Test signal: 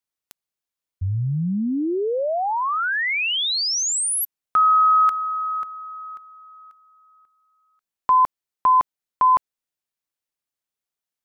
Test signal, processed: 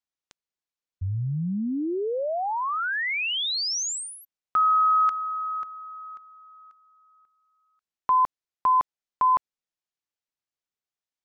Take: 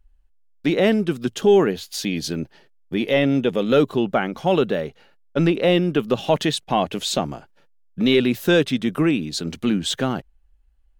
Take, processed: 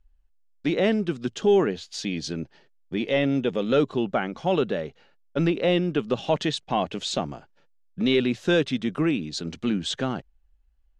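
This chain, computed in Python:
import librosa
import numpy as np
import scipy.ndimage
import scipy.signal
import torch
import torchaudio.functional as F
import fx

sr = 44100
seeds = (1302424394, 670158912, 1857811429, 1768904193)

y = scipy.signal.sosfilt(scipy.signal.butter(4, 7400.0, 'lowpass', fs=sr, output='sos'), x)
y = F.gain(torch.from_numpy(y), -4.5).numpy()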